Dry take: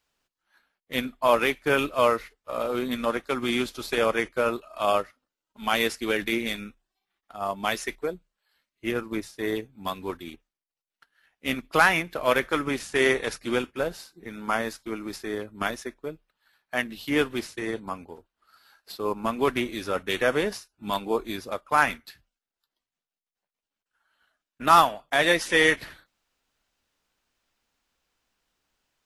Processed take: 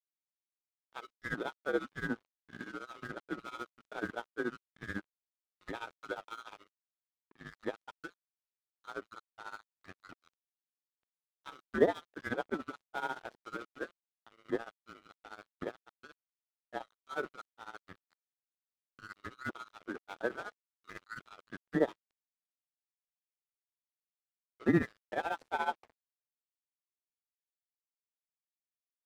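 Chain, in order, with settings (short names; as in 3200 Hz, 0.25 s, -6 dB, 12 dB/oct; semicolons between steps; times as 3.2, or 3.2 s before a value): band-swap scrambler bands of 1000 Hz; band-pass 390 Hz, Q 1.4; crossover distortion -46.5 dBFS; grains 93 ms, grains 14/s, spray 12 ms, pitch spread up and down by 0 st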